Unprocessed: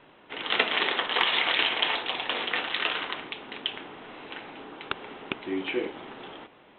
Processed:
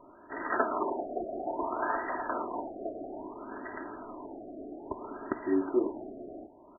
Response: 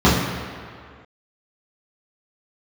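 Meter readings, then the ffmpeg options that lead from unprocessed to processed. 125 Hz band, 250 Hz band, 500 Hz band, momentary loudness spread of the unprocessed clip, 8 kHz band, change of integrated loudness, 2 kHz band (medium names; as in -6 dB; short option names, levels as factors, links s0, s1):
-4.0 dB, +3.5 dB, +1.5 dB, 19 LU, no reading, -7.5 dB, -12.5 dB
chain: -af "aecho=1:1:3.1:0.66,afftfilt=real='re*lt(b*sr/1024,730*pow(2000/730,0.5+0.5*sin(2*PI*0.6*pts/sr)))':imag='im*lt(b*sr/1024,730*pow(2000/730,0.5+0.5*sin(2*PI*0.6*pts/sr)))':win_size=1024:overlap=0.75"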